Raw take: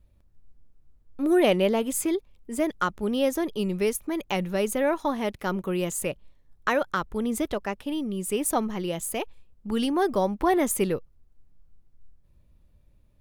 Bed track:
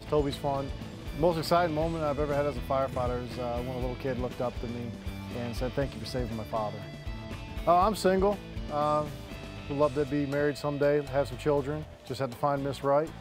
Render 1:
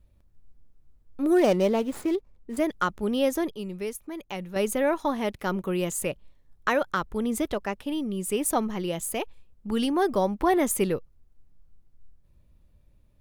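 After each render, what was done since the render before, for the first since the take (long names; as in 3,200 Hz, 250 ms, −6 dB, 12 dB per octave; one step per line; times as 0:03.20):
0:01.34–0:02.57: running median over 15 samples
0:03.51–0:04.56: clip gain −7.5 dB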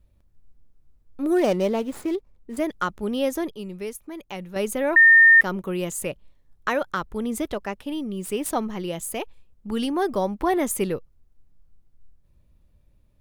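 0:04.96–0:05.41: beep over 1,820 Hz −9 dBFS
0:08.03–0:08.73: running median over 3 samples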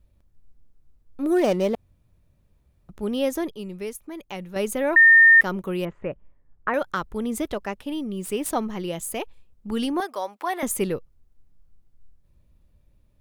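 0:01.75–0:02.89: fill with room tone
0:05.85–0:06.74: low-pass filter 2,000 Hz 24 dB per octave
0:10.00–0:10.63: high-pass filter 750 Hz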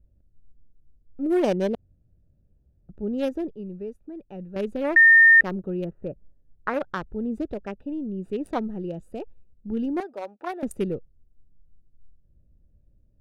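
adaptive Wiener filter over 41 samples
high-shelf EQ 11,000 Hz −11.5 dB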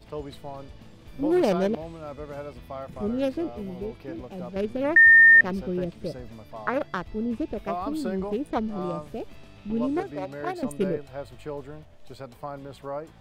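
mix in bed track −8.5 dB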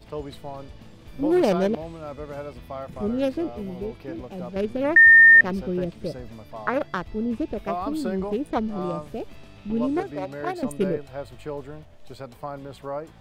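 level +2 dB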